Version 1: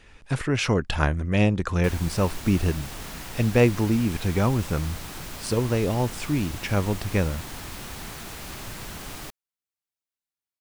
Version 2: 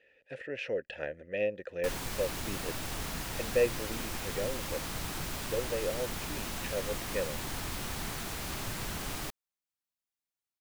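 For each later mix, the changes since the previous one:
speech: add vowel filter e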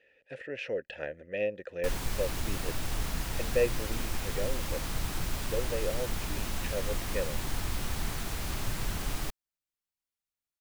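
background: add bass shelf 79 Hz +11.5 dB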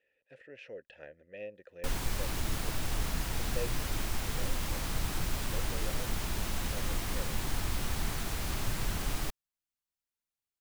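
speech -12.0 dB

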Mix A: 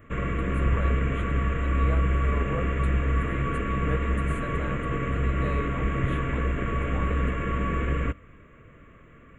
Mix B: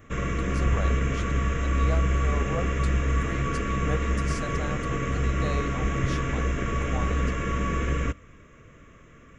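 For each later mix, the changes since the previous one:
speech: add peaking EQ 720 Hz +11 dB 0.33 oct; master: remove Butterworth band-stop 5.3 kHz, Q 0.86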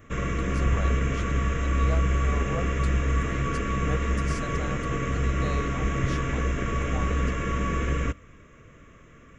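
speech: send -10.5 dB

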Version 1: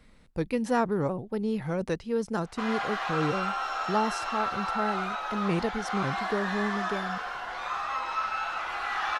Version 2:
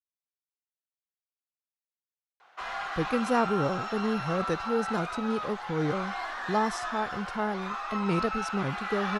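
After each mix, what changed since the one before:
speech: entry +2.60 s; reverb: off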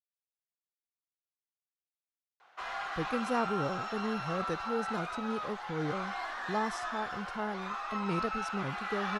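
speech -6.0 dB; background -3.0 dB

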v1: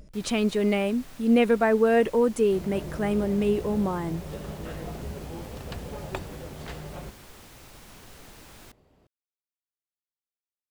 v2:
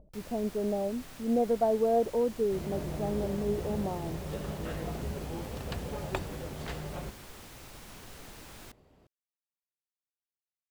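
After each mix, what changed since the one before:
speech: add four-pole ladder low-pass 840 Hz, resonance 50%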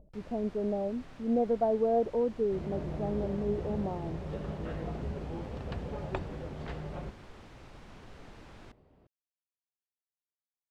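master: add tape spacing loss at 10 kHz 22 dB

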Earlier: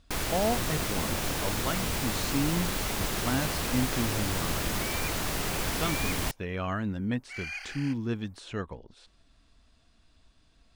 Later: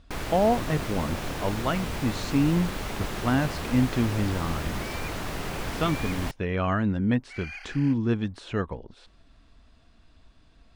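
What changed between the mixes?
speech +6.5 dB; master: add treble shelf 4.2 kHz -11 dB

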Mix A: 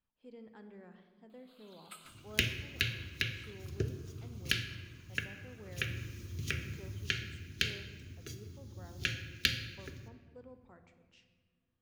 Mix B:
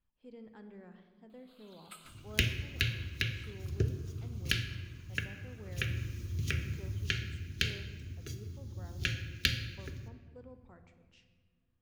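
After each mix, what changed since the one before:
master: add bass shelf 100 Hz +11 dB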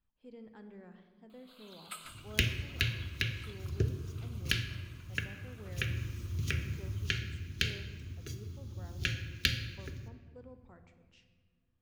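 first sound +6.5 dB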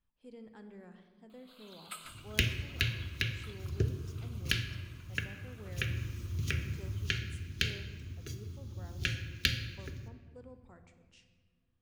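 speech: remove distance through air 93 m

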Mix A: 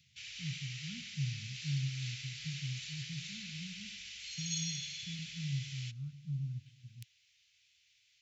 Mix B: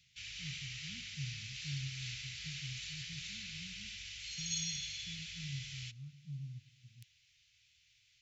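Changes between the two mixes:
speech -6.5 dB; background: add bass shelf 490 Hz +11 dB

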